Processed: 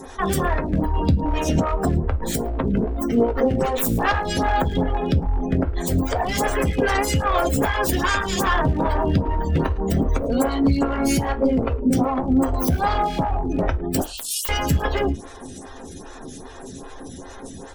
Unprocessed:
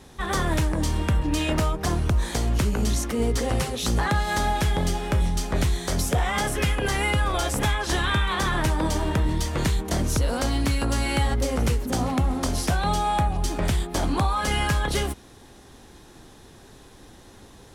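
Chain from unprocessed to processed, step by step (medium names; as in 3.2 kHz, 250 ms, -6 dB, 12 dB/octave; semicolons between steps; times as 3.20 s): tracing distortion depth 0.3 ms; 14.01–14.49 s: steep high-pass 2.7 kHz 96 dB/octave; spectral gate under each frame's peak -25 dB strong; resonant high shelf 5.4 kHz +7.5 dB, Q 1.5; in parallel at +0.5 dB: compression 4:1, threshold -33 dBFS, peak gain reduction 12.5 dB; on the sum: one-sided clip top -19.5 dBFS; delay 109 ms -23 dB; on a send at -6 dB: reverberation, pre-delay 4 ms; on the sum: loudness maximiser +13.5 dB; lamp-driven phase shifter 2.5 Hz; trim -7 dB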